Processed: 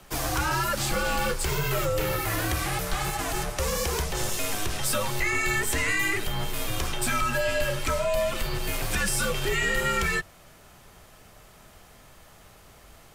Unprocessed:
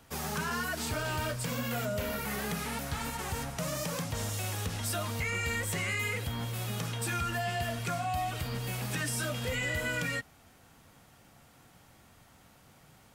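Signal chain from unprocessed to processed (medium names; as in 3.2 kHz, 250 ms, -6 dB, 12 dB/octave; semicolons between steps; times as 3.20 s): Chebyshev shaper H 2 -23 dB, 6 -40 dB, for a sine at -24 dBFS; frequency shift -99 Hz; trim +7.5 dB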